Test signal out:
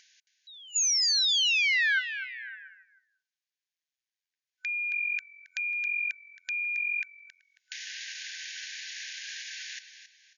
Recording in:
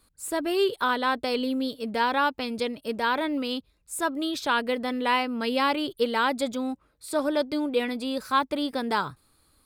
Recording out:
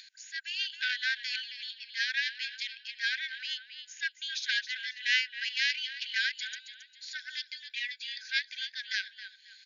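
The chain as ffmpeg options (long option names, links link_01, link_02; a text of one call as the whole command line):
ffmpeg -i in.wav -filter_complex "[0:a]acompressor=mode=upward:threshold=-31dB:ratio=2.5,asplit=5[link_01][link_02][link_03][link_04][link_05];[link_02]adelay=271,afreqshift=-44,volume=-11dB[link_06];[link_03]adelay=542,afreqshift=-88,volume=-20.6dB[link_07];[link_04]adelay=813,afreqshift=-132,volume=-30.3dB[link_08];[link_05]adelay=1084,afreqshift=-176,volume=-39.9dB[link_09];[link_01][link_06][link_07][link_08][link_09]amix=inputs=5:normalize=0,aeval=exprs='0.282*(cos(1*acos(clip(val(0)/0.282,-1,1)))-cos(1*PI/2))+0.126*(cos(2*acos(clip(val(0)/0.282,-1,1)))-cos(2*PI/2))':channel_layout=same,afftfilt=real='re*between(b*sr/4096,1500,7000)':imag='im*between(b*sr/4096,1500,7000)':win_size=4096:overlap=0.75" out.wav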